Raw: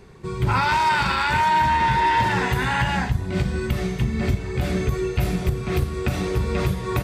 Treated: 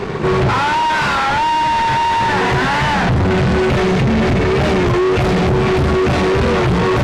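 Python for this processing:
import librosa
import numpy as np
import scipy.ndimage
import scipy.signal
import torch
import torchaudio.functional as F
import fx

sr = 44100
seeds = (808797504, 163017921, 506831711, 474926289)

p1 = fx.highpass(x, sr, hz=69.0, slope=6)
p2 = fx.low_shelf(p1, sr, hz=120.0, db=-9.0)
p3 = fx.hum_notches(p2, sr, base_hz=60, count=6)
p4 = fx.over_compress(p3, sr, threshold_db=-28.0, ratio=-1.0)
p5 = p3 + (p4 * librosa.db_to_amplitude(-3.0))
p6 = fx.fuzz(p5, sr, gain_db=39.0, gate_db=-48.0)
p7 = fx.spacing_loss(p6, sr, db_at_10k=22)
p8 = fx.record_warp(p7, sr, rpm=33.33, depth_cents=100.0)
y = p8 * librosa.db_to_amplitude(1.5)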